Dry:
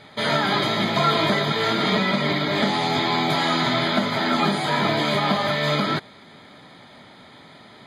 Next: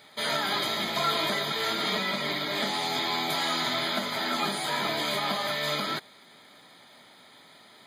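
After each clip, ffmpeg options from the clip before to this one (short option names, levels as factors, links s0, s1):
-af "aemphasis=mode=production:type=bsi,volume=0.422"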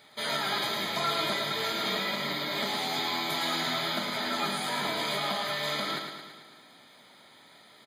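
-af "aecho=1:1:110|220|330|440|550|660|770|880:0.473|0.284|0.17|0.102|0.0613|0.0368|0.0221|0.0132,volume=0.708"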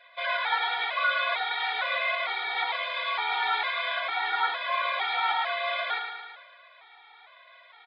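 -af "highpass=f=530:t=q:w=0.5412,highpass=f=530:t=q:w=1.307,lowpass=f=3200:t=q:w=0.5176,lowpass=f=3200:t=q:w=0.7071,lowpass=f=3200:t=q:w=1.932,afreqshift=98,afftfilt=real='re*gt(sin(2*PI*1.1*pts/sr)*(1-2*mod(floor(b*sr/1024/240),2)),0)':imag='im*gt(sin(2*PI*1.1*pts/sr)*(1-2*mod(floor(b*sr/1024/240),2)),0)':win_size=1024:overlap=0.75,volume=2.51"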